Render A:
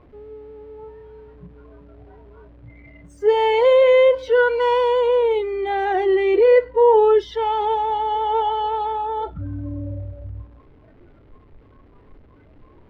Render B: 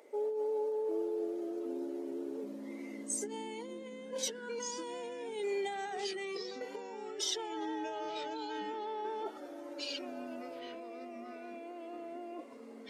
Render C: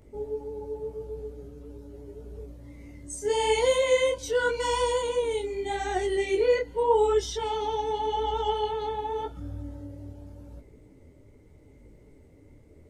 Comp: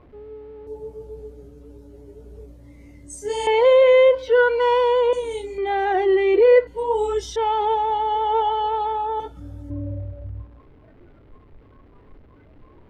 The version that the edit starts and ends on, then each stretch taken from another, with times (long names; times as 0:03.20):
A
0:00.67–0:03.47: punch in from C
0:05.13–0:05.58: punch in from C
0:06.67–0:07.36: punch in from C
0:09.20–0:09.70: punch in from C
not used: B